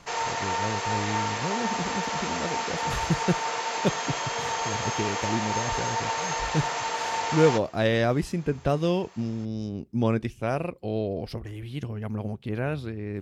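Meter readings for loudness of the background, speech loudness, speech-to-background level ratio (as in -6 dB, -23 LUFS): -29.0 LUFS, -29.5 LUFS, -0.5 dB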